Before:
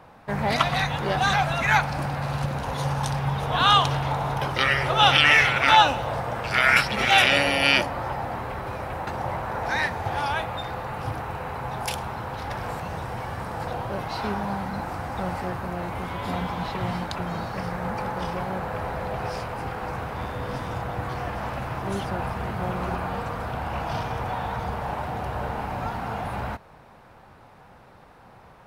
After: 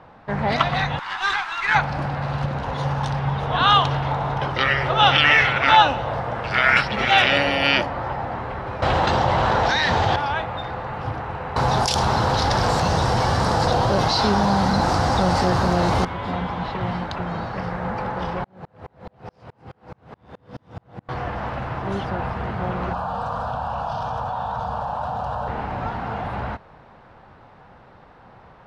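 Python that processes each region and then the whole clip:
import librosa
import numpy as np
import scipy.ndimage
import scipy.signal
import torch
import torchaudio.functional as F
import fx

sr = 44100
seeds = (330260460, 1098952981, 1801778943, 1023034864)

y = fx.chain(x, sr, fx.steep_highpass(hz=910.0, slope=48),
    fx.high_shelf(hz=8000.0, db=6.5),
    fx.running_max(window=3), at=(0.99, 1.75))
y = fx.chain(y, sr, fx.band_shelf(hz=4900.0, db=11.0, octaves=1.7),
    fx.env_flatten(amount_pct=100), at=(8.82, 10.16))
y = fx.chain(y, sr, fx.high_shelf_res(hz=3500.0, db=13.0, q=1.5),
    fx.env_flatten(amount_pct=70), at=(11.56, 16.05))
y = fx.chain(y, sr, fx.highpass(hz=100.0, slope=12),
    fx.peak_eq(hz=1400.0, db=-8.5, octaves=2.9),
    fx.tremolo_decay(direction='swelling', hz=4.7, depth_db=37), at=(18.44, 21.09))
y = fx.chain(y, sr, fx.low_shelf(hz=160.0, db=-8.5),
    fx.fixed_phaser(hz=860.0, stages=4),
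    fx.env_flatten(amount_pct=100), at=(22.93, 25.48))
y = scipy.signal.sosfilt(scipy.signal.butter(2, 4000.0, 'lowpass', fs=sr, output='sos'), y)
y = fx.peak_eq(y, sr, hz=2400.0, db=-3.5, octaves=0.21)
y = F.gain(torch.from_numpy(y), 2.5).numpy()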